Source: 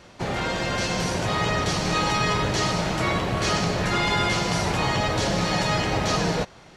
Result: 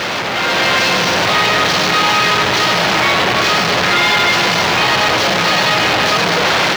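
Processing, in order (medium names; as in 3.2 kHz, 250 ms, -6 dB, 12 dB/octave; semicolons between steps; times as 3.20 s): one-bit comparator; high-pass 110 Hz 6 dB/octave; tilt EQ +3 dB/octave; level rider gain up to 8 dB; distance through air 240 m; trim +7.5 dB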